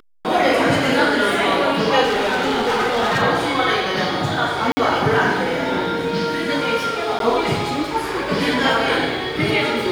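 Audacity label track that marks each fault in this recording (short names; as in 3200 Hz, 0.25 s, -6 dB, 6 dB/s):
2.030000	3.230000	clipped -15.5 dBFS
4.720000	4.770000	gap 50 ms
7.190000	7.200000	gap 12 ms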